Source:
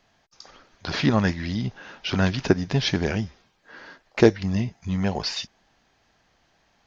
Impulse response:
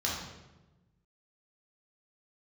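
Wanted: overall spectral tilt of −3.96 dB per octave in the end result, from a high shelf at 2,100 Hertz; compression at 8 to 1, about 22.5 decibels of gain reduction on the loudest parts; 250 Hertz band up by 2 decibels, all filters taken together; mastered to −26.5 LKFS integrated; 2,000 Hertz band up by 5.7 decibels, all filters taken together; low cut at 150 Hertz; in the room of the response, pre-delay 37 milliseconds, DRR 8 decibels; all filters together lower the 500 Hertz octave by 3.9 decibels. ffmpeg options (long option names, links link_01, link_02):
-filter_complex "[0:a]highpass=150,equalizer=frequency=250:width_type=o:gain=6,equalizer=frequency=500:width_type=o:gain=-8.5,equalizer=frequency=2000:width_type=o:gain=3.5,highshelf=frequency=2100:gain=7.5,acompressor=threshold=-35dB:ratio=8,asplit=2[link_01][link_02];[1:a]atrim=start_sample=2205,adelay=37[link_03];[link_02][link_03]afir=irnorm=-1:irlink=0,volume=-15dB[link_04];[link_01][link_04]amix=inputs=2:normalize=0,volume=11.5dB"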